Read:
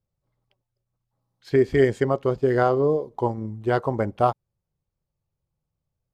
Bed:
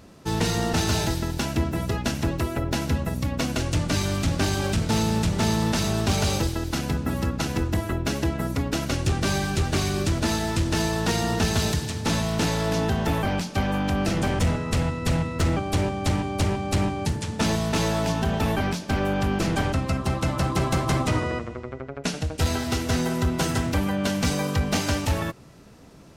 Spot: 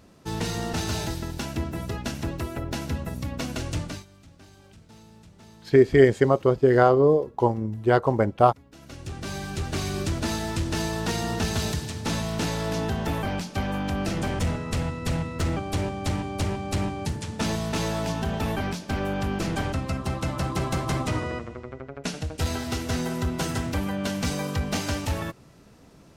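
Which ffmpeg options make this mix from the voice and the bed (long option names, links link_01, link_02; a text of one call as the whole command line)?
ffmpeg -i stem1.wav -i stem2.wav -filter_complex "[0:a]adelay=4200,volume=2.5dB[link_01];[1:a]volume=19dB,afade=type=out:start_time=3.78:duration=0.27:silence=0.0749894,afade=type=in:start_time=8.7:duration=1.26:silence=0.0630957[link_02];[link_01][link_02]amix=inputs=2:normalize=0" out.wav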